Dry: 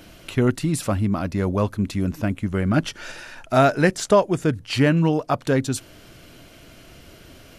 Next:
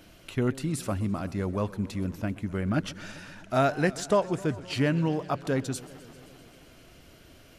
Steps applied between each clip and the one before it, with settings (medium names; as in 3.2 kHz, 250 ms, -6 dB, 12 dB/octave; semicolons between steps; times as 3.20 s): modulated delay 130 ms, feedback 78%, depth 189 cents, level -19.5 dB; trim -7.5 dB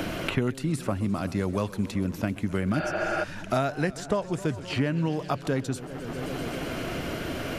spectral replace 2.82–3.21 s, 330–4900 Hz before; three bands compressed up and down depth 100%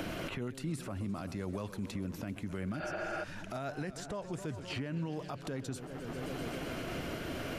peak limiter -22.5 dBFS, peak gain reduction 11 dB; trim -6.5 dB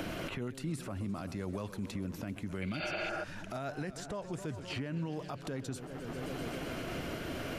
time-frequency box 2.62–3.09 s, 2–4.7 kHz +12 dB